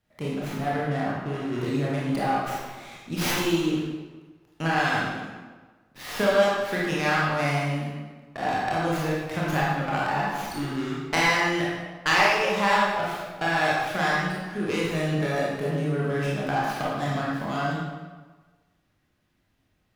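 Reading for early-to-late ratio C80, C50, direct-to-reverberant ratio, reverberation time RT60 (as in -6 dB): 1.0 dB, -2.0 dB, -6.5 dB, 1.4 s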